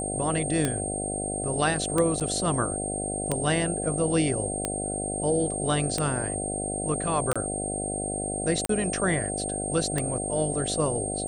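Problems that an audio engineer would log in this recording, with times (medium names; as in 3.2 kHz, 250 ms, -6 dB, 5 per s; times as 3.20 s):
buzz 50 Hz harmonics 15 -33 dBFS
tick 45 rpm -11 dBFS
whine 8.6 kHz -31 dBFS
2.20–2.21 s: dropout 7.1 ms
7.33–7.36 s: dropout 26 ms
8.66–8.69 s: dropout 33 ms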